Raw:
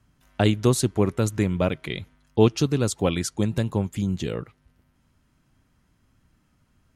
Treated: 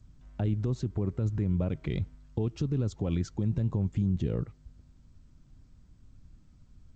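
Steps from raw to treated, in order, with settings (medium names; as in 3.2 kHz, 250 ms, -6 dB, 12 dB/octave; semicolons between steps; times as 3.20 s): tilt EQ -4 dB/octave; compression 2.5:1, threshold -15 dBFS, peak gain reduction 8.5 dB; peak limiter -14.5 dBFS, peak gain reduction 10 dB; 1.67–4.08 s: treble shelf 3.9 kHz +3.5 dB; trim -6 dB; G.722 64 kbps 16 kHz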